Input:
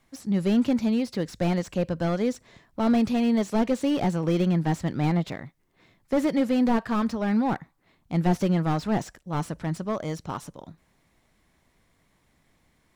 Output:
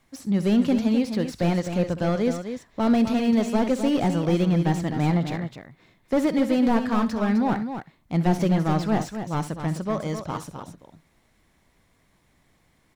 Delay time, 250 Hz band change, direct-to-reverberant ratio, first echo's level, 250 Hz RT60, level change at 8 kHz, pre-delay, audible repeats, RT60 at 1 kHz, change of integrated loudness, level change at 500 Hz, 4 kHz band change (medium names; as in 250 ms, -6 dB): 65 ms, +2.0 dB, no reverb, -14.0 dB, no reverb, +2.0 dB, no reverb, 2, no reverb, +2.0 dB, +2.0 dB, +2.0 dB